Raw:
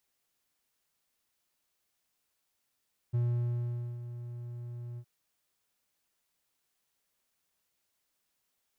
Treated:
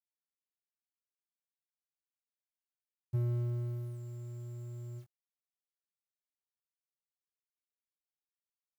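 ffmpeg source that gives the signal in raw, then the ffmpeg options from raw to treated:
-f lavfi -i "aevalsrc='0.0668*(1-4*abs(mod(120*t+0.25,1)-0.5))':d=1.915:s=44100,afade=t=in:d=0.018,afade=t=out:st=0.018:d=0.833:silence=0.224,afade=t=out:st=1.85:d=0.065"
-filter_complex "[0:a]acrusher=bits=10:mix=0:aa=0.000001,asplit=2[a][b];[b]adelay=22,volume=-6.5dB[c];[a][c]amix=inputs=2:normalize=0"

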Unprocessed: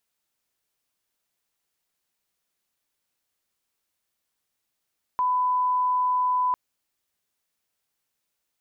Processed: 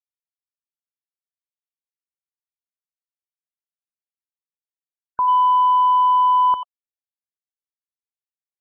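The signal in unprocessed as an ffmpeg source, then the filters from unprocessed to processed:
-f lavfi -i "sine=f=1000:d=1.35:r=44100,volume=-1.94dB"
-filter_complex "[0:a]acontrast=46,asplit=2[a][b];[b]adelay=90,highpass=300,lowpass=3.4k,asoftclip=type=hard:threshold=-17.5dB,volume=-8dB[c];[a][c]amix=inputs=2:normalize=0,afftfilt=real='re*gte(hypot(re,im),0.0251)':imag='im*gte(hypot(re,im),0.0251)':win_size=1024:overlap=0.75"

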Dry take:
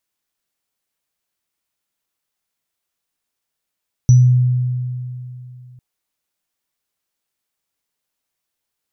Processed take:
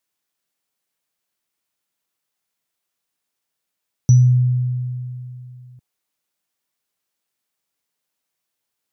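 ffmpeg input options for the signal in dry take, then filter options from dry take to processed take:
-f lavfi -i "aevalsrc='0.596*pow(10,-3*t/2.89)*sin(2*PI*125*t)+0.0668*pow(10,-3*t/0.33)*sin(2*PI*5910*t)':d=1.7:s=44100"
-af "highpass=96"

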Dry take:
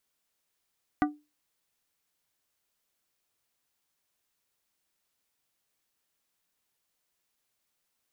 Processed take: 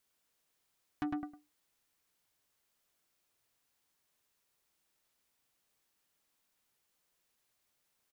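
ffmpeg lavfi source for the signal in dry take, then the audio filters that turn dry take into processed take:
-f lavfi -i "aevalsrc='0.106*pow(10,-3*t/0.26)*sin(2*PI*297*t)+0.075*pow(10,-3*t/0.137)*sin(2*PI*742.5*t)+0.0531*pow(10,-3*t/0.099)*sin(2*PI*1188*t)+0.0376*pow(10,-3*t/0.084)*sin(2*PI*1485*t)+0.0266*pow(10,-3*t/0.07)*sin(2*PI*1930.5*t)':d=0.89:s=44100"
-filter_complex "[0:a]asplit=2[a][b];[b]adelay=105,lowpass=f=2k:p=1,volume=-3dB,asplit=2[c][d];[d]adelay=105,lowpass=f=2k:p=1,volume=0.21,asplit=2[e][f];[f]adelay=105,lowpass=f=2k:p=1,volume=0.21[g];[c][e][g]amix=inputs=3:normalize=0[h];[a][h]amix=inputs=2:normalize=0,asoftclip=type=tanh:threshold=-25.5dB,alimiter=level_in=6dB:limit=-24dB:level=0:latency=1:release=32,volume=-6dB"

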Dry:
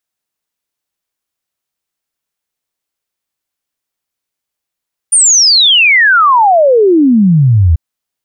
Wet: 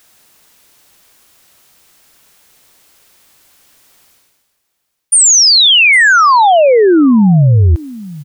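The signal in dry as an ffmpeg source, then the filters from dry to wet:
-f lavfi -i "aevalsrc='0.631*clip(min(t,2.64-t)/0.01,0,1)*sin(2*PI*9500*2.64/log(76/9500)*(exp(log(76/9500)*t/2.64)-1))':d=2.64:s=44100"
-af "areverse,acompressor=mode=upward:threshold=-25dB:ratio=2.5,areverse,aecho=1:1:806:0.106"

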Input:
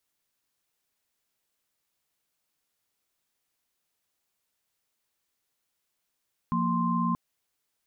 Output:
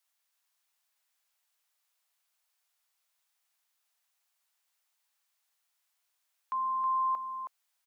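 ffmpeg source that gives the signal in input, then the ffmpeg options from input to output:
-f lavfi -i "aevalsrc='0.0398*(sin(2*PI*174.61*t)+sin(2*PI*233.08*t)+sin(2*PI*1046.5*t))':d=0.63:s=44100"
-af "highpass=f=680:w=0.5412,highpass=f=680:w=1.3066,aecho=1:1:320:0.447"

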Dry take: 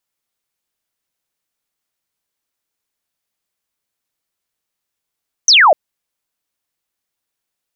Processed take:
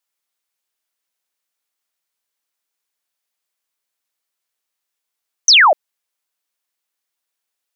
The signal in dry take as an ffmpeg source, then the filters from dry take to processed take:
-f lavfi -i "aevalsrc='0.562*clip(t/0.002,0,1)*clip((0.25-t)/0.002,0,1)*sin(2*PI*6400*0.25/log(560/6400)*(exp(log(560/6400)*t/0.25)-1))':d=0.25:s=44100"
-af "highpass=f=600:p=1"

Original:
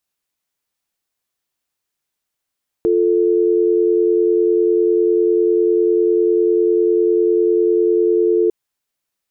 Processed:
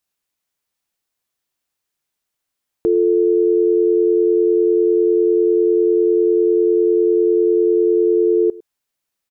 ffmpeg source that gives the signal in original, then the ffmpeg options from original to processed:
-f lavfi -i "aevalsrc='0.188*(sin(2*PI*350*t)+sin(2*PI*440*t))':d=5.65:s=44100"
-filter_complex "[0:a]asplit=2[a][b];[b]adelay=105,volume=-21dB,highshelf=f=4k:g=-2.36[c];[a][c]amix=inputs=2:normalize=0"

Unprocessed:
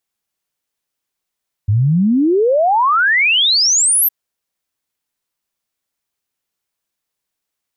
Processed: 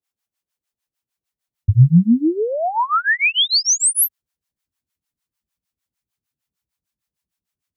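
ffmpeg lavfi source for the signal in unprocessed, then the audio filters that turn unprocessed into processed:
-f lavfi -i "aevalsrc='0.316*clip(min(t,2.41-t)/0.01,0,1)*sin(2*PI*97*2.41/log(13000/97)*(exp(log(13000/97)*t/2.41)-1))':d=2.41:s=44100"
-filter_complex "[0:a]highpass=42,asubboost=boost=4.5:cutoff=220,acrossover=split=570[a][b];[a]aeval=exprs='val(0)*(1-1/2+1/2*cos(2*PI*6.6*n/s))':c=same[c];[b]aeval=exprs='val(0)*(1-1/2-1/2*cos(2*PI*6.6*n/s))':c=same[d];[c][d]amix=inputs=2:normalize=0"

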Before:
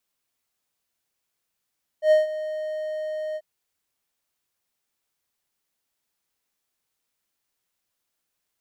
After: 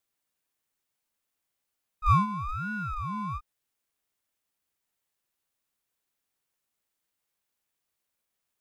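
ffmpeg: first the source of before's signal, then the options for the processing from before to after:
-f lavfi -i "aevalsrc='0.316*(1-4*abs(mod(619*t+0.25,1)-0.5))':d=1.389:s=44100,afade=t=in:d=0.093,afade=t=out:st=0.093:d=0.151:silence=0.178,afade=t=out:st=1.34:d=0.049"
-af "equalizer=f=4.9k:w=1.5:g=-3,aeval=exprs='val(0)*sin(2*PI*620*n/s+620*0.35/1.1*sin(2*PI*1.1*n/s))':c=same"

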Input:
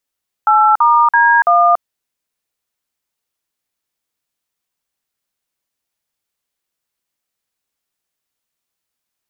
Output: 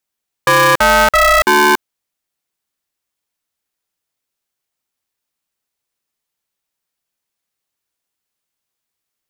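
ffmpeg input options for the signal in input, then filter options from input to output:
-f lavfi -i "aevalsrc='0.316*clip(min(mod(t,0.333),0.285-mod(t,0.333))/0.002,0,1)*(eq(floor(t/0.333),0)*(sin(2*PI*852*mod(t,0.333))+sin(2*PI*1336*mod(t,0.333)))+eq(floor(t/0.333),1)*(sin(2*PI*941*mod(t,0.333))+sin(2*PI*1209*mod(t,0.333)))+eq(floor(t/0.333),2)*(sin(2*PI*941*mod(t,0.333))+sin(2*PI*1633*mod(t,0.333)))+eq(floor(t/0.333),3)*(sin(2*PI*697*mod(t,0.333))+sin(2*PI*1209*mod(t,0.333))))':d=1.332:s=44100"
-af "aeval=exprs='val(0)*sgn(sin(2*PI*330*n/s))':c=same"

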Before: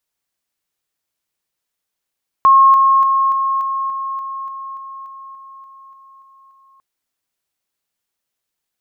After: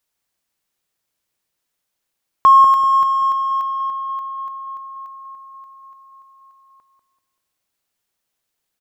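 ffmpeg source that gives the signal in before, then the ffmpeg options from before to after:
-f lavfi -i "aevalsrc='pow(10,(-5.5-3*floor(t/0.29))/20)*sin(2*PI*1080*t)':d=4.35:s=44100"
-filter_complex "[0:a]asplit=2[a][b];[b]asoftclip=type=tanh:threshold=-22.5dB,volume=-10dB[c];[a][c]amix=inputs=2:normalize=0,asplit=2[d][e];[e]adelay=193,lowpass=f=870:p=1,volume=-5dB,asplit=2[f][g];[g]adelay=193,lowpass=f=870:p=1,volume=0.48,asplit=2[h][i];[i]adelay=193,lowpass=f=870:p=1,volume=0.48,asplit=2[j][k];[k]adelay=193,lowpass=f=870:p=1,volume=0.48,asplit=2[l][m];[m]adelay=193,lowpass=f=870:p=1,volume=0.48,asplit=2[n][o];[o]adelay=193,lowpass=f=870:p=1,volume=0.48[p];[d][f][h][j][l][n][p]amix=inputs=7:normalize=0"

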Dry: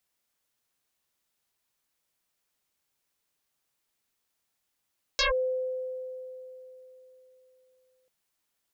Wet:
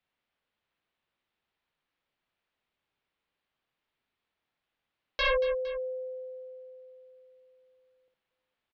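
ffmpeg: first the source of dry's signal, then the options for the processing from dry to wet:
-f lavfi -i "aevalsrc='0.0891*pow(10,-3*t/3.63)*sin(2*PI*513*t+11*clip(1-t/0.13,0,1)*sin(2*PI*1.06*513*t))':d=2.89:s=44100"
-filter_complex "[0:a]lowpass=f=3.5k:w=0.5412,lowpass=f=3.5k:w=1.3066,asplit=2[a][b];[b]aecho=0:1:59|231|460:0.501|0.211|0.119[c];[a][c]amix=inputs=2:normalize=0"

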